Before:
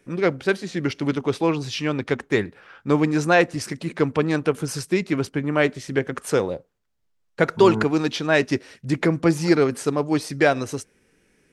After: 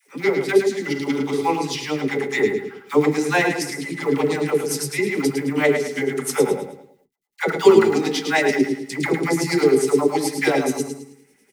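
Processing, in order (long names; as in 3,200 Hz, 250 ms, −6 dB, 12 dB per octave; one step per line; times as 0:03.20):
RIAA equalisation recording
repeating echo 108 ms, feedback 36%, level −7 dB
on a send at −7.5 dB: convolution reverb RT60 0.45 s, pre-delay 4 ms
on the sum: two-band tremolo in antiphase 9.6 Hz, depth 70%, crossover 2,300 Hz
log-companded quantiser 6 bits
comb filter 6.9 ms, depth 35%
hollow resonant body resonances 220/370/800/2,000 Hz, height 16 dB, ringing for 40 ms
all-pass dispersion lows, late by 85 ms, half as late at 600 Hz
level −3.5 dB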